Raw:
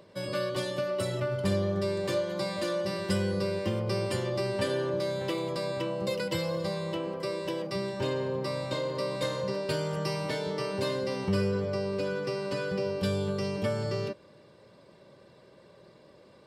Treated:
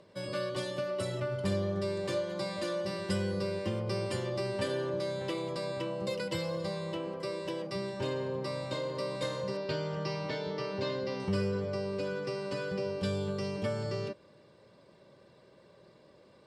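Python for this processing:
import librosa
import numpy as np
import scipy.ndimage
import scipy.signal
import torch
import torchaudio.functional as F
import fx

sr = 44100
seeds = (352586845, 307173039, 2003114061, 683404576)

y = fx.lowpass(x, sr, hz=fx.steps((0.0, 11000.0), (9.57, 5600.0), (11.2, 10000.0)), slope=24)
y = F.gain(torch.from_numpy(y), -3.5).numpy()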